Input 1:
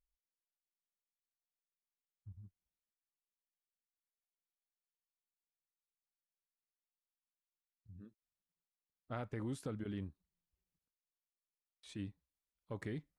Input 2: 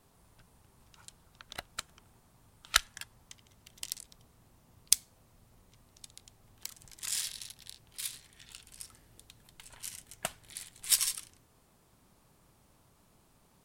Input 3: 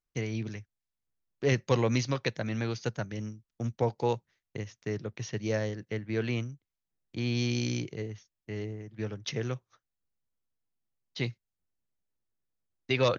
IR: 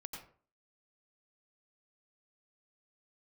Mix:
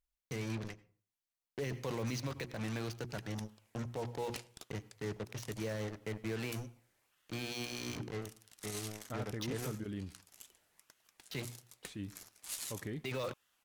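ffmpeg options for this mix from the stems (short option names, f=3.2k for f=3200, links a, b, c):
-filter_complex "[0:a]volume=0dB,asplit=2[a][b];[b]volume=-15dB[c];[1:a]highpass=400,aeval=exprs='0.168*(abs(mod(val(0)/0.168+3,4)-2)-1)':c=same,aeval=exprs='val(0)*sin(2*PI*1700*n/s+1700*0.4/1.6*sin(2*PI*1.6*n/s))':c=same,adelay=1600,volume=-4.5dB[d];[2:a]acrusher=bits=5:mix=0:aa=0.5,bandreject=f=60:t=h:w=6,bandreject=f=120:t=h:w=6,bandreject=f=180:t=h:w=6,bandreject=f=240:t=h:w=6,bandreject=f=300:t=h:w=6,bandreject=f=360:t=h:w=6,adelay=150,volume=-6dB,asplit=2[e][f];[f]volume=-13.5dB[g];[3:a]atrim=start_sample=2205[h];[c][g]amix=inputs=2:normalize=0[i];[i][h]afir=irnorm=-1:irlink=0[j];[a][d][e][j]amix=inputs=4:normalize=0,alimiter=level_in=5.5dB:limit=-24dB:level=0:latency=1:release=22,volume=-5.5dB"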